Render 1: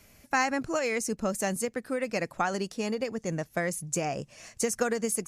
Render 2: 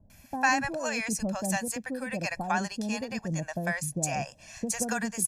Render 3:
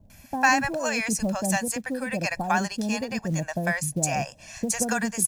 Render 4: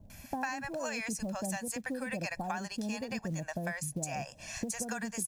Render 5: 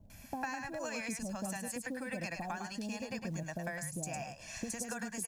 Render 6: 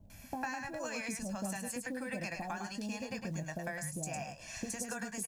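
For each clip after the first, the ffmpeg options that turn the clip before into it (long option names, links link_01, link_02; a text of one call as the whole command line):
ffmpeg -i in.wav -filter_complex "[0:a]aecho=1:1:1.2:0.66,acrossover=split=630[link_01][link_02];[link_02]adelay=100[link_03];[link_01][link_03]amix=inputs=2:normalize=0" out.wav
ffmpeg -i in.wav -af "acrusher=bits=8:mode=log:mix=0:aa=0.000001,volume=4.5dB" out.wav
ffmpeg -i in.wav -af "acompressor=threshold=-33dB:ratio=10" out.wav
ffmpeg -i in.wav -af "aecho=1:1:106:0.501,volume=-4dB" out.wav
ffmpeg -i in.wav -filter_complex "[0:a]asplit=2[link_01][link_02];[link_02]adelay=20,volume=-11dB[link_03];[link_01][link_03]amix=inputs=2:normalize=0" out.wav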